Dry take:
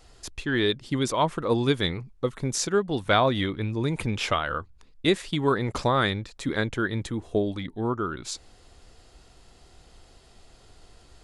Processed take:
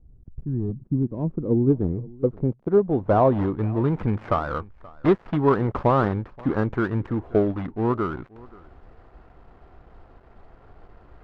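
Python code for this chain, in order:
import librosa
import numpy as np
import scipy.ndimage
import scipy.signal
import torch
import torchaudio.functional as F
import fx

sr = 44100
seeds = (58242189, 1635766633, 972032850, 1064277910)

p1 = fx.dead_time(x, sr, dead_ms=0.18)
p2 = fx.dynamic_eq(p1, sr, hz=2100.0, q=0.88, threshold_db=-39.0, ratio=4.0, max_db=-4)
p3 = fx.filter_sweep_lowpass(p2, sr, from_hz=160.0, to_hz=1300.0, start_s=0.43, end_s=3.94, q=1.1)
p4 = p3 + fx.echo_single(p3, sr, ms=528, db=-23.0, dry=0)
y = p4 * 10.0 ** (4.5 / 20.0)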